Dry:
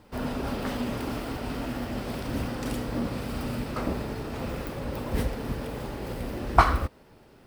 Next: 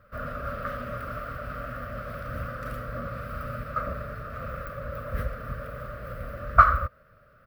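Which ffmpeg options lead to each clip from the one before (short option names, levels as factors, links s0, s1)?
-af "firequalizer=gain_entry='entry(120,0);entry(350,-20);entry(580,6);entry(870,-26);entry(1200,12);entry(2000,-3);entry(3100,-11);entry(7700,-17);entry(14000,-2)':delay=0.05:min_phase=1,volume=0.841"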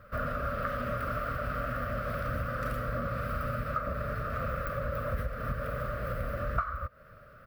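-af "acompressor=threshold=0.0224:ratio=10,volume=1.68"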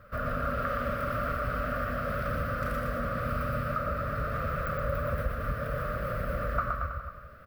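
-af "aecho=1:1:120|228|325.2|412.7|491.4:0.631|0.398|0.251|0.158|0.1"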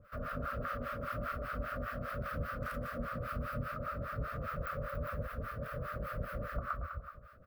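-filter_complex "[0:a]acrossover=split=710[s0][s1];[s0]aeval=exprs='val(0)*(1-1/2+1/2*cos(2*PI*5*n/s))':c=same[s2];[s1]aeval=exprs='val(0)*(1-1/2-1/2*cos(2*PI*5*n/s))':c=same[s3];[s2][s3]amix=inputs=2:normalize=0,volume=0.708"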